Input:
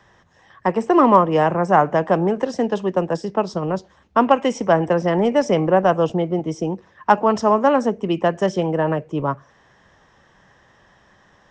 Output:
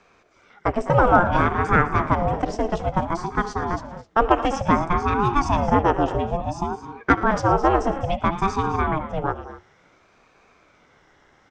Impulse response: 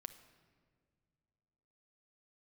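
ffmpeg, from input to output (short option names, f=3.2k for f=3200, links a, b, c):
-af "aecho=1:1:76|113|203|218|256:0.106|0.126|0.141|0.178|0.15,aeval=exprs='val(0)*sin(2*PI*410*n/s+410*0.5/0.58*sin(2*PI*0.58*n/s))':c=same"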